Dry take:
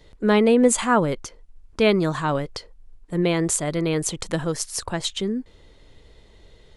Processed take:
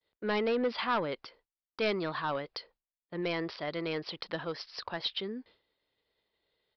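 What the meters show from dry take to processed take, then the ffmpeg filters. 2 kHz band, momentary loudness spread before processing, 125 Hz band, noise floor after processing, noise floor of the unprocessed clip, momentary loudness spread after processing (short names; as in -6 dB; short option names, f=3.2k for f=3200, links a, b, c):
-8.0 dB, 13 LU, -17.5 dB, under -85 dBFS, -52 dBFS, 13 LU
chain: -af "highpass=f=720:p=1,agate=range=-33dB:threshold=-48dB:ratio=3:detection=peak,aresample=11025,asoftclip=type=tanh:threshold=-19.5dB,aresample=44100,volume=-4dB"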